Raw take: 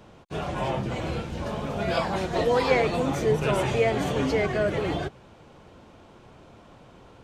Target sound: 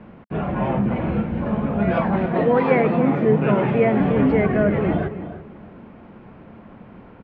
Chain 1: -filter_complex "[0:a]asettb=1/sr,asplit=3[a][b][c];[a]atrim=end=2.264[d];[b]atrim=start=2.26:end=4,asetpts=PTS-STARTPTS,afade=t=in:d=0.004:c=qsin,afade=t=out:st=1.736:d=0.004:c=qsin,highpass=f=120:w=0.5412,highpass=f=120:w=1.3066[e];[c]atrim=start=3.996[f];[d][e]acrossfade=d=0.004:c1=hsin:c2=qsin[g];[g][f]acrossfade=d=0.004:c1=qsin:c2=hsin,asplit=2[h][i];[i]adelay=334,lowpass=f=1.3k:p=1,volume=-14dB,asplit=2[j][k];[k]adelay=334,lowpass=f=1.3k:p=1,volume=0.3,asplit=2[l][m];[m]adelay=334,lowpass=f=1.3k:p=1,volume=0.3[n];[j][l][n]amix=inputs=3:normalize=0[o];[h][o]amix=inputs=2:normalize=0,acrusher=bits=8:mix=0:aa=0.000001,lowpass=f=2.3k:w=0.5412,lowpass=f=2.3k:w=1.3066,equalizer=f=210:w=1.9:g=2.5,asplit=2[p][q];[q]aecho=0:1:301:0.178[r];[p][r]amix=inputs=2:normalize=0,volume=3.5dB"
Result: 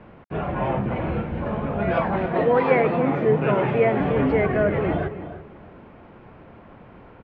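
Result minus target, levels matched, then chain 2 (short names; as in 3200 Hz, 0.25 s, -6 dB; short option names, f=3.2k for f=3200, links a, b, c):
250 Hz band -3.0 dB
-filter_complex "[0:a]asettb=1/sr,asplit=3[a][b][c];[a]atrim=end=2.264[d];[b]atrim=start=2.26:end=4,asetpts=PTS-STARTPTS,afade=t=in:d=0.004:c=qsin,afade=t=out:st=1.736:d=0.004:c=qsin,highpass=f=120:w=0.5412,highpass=f=120:w=1.3066[e];[c]atrim=start=3.996[f];[d][e]acrossfade=d=0.004:c1=hsin:c2=qsin[g];[g][f]acrossfade=d=0.004:c1=qsin:c2=hsin,asplit=2[h][i];[i]adelay=334,lowpass=f=1.3k:p=1,volume=-14dB,asplit=2[j][k];[k]adelay=334,lowpass=f=1.3k:p=1,volume=0.3,asplit=2[l][m];[m]adelay=334,lowpass=f=1.3k:p=1,volume=0.3[n];[j][l][n]amix=inputs=3:normalize=0[o];[h][o]amix=inputs=2:normalize=0,acrusher=bits=8:mix=0:aa=0.000001,lowpass=f=2.3k:w=0.5412,lowpass=f=2.3k:w=1.3066,equalizer=f=210:w=1.9:g=10.5,asplit=2[p][q];[q]aecho=0:1:301:0.178[r];[p][r]amix=inputs=2:normalize=0,volume=3.5dB"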